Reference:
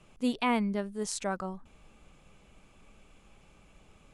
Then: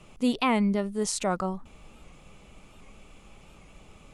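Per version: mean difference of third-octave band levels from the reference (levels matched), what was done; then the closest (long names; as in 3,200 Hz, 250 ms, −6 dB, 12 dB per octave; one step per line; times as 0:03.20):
2.0 dB: notch filter 1,600 Hz, Q 10
in parallel at +2 dB: brickwall limiter −26 dBFS, peak gain reduction 10 dB
on the sum: wow of a warped record 78 rpm, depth 100 cents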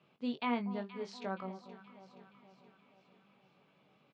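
5.0 dB: elliptic band-pass filter 140–4,300 Hz, stop band 50 dB
double-tracking delay 21 ms −8 dB
delay that swaps between a low-pass and a high-pass 237 ms, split 990 Hz, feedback 73%, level −12 dB
level −7.5 dB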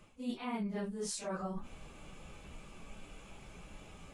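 10.0 dB: random phases in long frames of 100 ms
reversed playback
downward compressor 6 to 1, threshold −44 dBFS, peak gain reduction 21 dB
reversed playback
level +7 dB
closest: first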